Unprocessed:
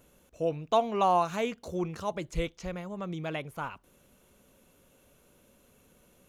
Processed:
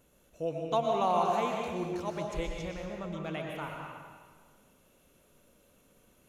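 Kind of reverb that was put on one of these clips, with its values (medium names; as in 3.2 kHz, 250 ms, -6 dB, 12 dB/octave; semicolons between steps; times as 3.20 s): algorithmic reverb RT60 1.6 s, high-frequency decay 0.9×, pre-delay 80 ms, DRR 0 dB; trim -4.5 dB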